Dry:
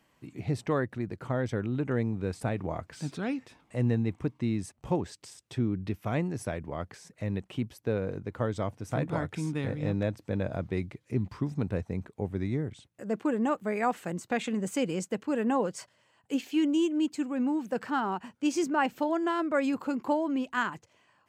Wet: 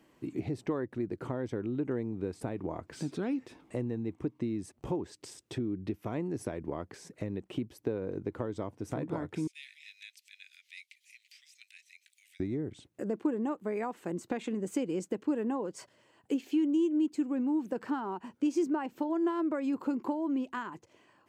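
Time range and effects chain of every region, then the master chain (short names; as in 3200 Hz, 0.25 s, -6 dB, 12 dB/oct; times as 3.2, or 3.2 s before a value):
9.47–12.4 steep high-pass 2200 Hz 48 dB/oct + upward compressor, threshold -53 dBFS
whole clip: dynamic EQ 970 Hz, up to +6 dB, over -48 dBFS, Q 3.7; compressor 5:1, threshold -37 dBFS; bell 340 Hz +11 dB 1.1 oct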